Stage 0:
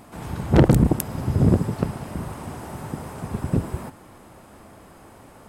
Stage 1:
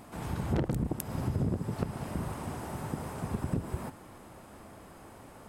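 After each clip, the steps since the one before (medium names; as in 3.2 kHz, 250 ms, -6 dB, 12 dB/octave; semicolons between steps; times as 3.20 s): compression 5:1, threshold -24 dBFS, peak gain reduction 13.5 dB; trim -3.5 dB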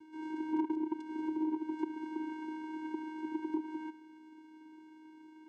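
vocoder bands 4, square 313 Hz; dynamic bell 1.1 kHz, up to +6 dB, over -51 dBFS, Q 0.79; trim -3.5 dB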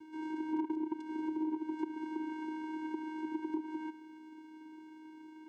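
compression 1.5:1, threshold -43 dBFS, peak gain reduction 6 dB; trim +3 dB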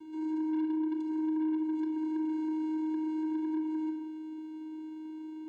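saturation -37.5 dBFS, distortion -10 dB; simulated room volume 3400 m³, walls furnished, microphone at 3.1 m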